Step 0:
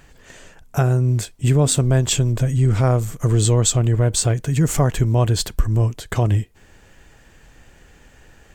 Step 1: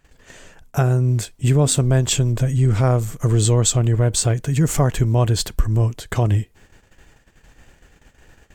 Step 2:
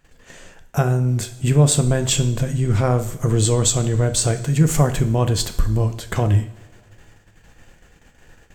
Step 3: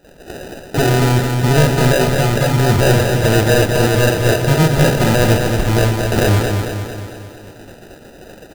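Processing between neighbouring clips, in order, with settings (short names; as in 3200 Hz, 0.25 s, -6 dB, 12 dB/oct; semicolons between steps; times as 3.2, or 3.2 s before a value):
gate -47 dBFS, range -14 dB
two-slope reverb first 0.57 s, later 2.3 s, from -18 dB, DRR 8 dB
overdrive pedal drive 27 dB, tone 1100 Hz, clips at -4 dBFS; sample-rate reducer 1100 Hz, jitter 0%; feedback echo 0.224 s, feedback 55%, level -5 dB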